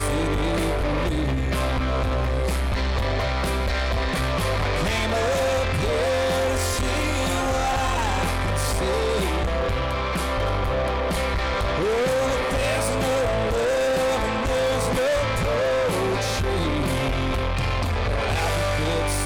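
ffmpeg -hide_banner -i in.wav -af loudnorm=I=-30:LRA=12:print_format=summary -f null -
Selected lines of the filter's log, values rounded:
Input Integrated:    -23.5 LUFS
Input True Peak:     -18.0 dBTP
Input LRA:             1.6 LU
Input Threshold:     -33.5 LUFS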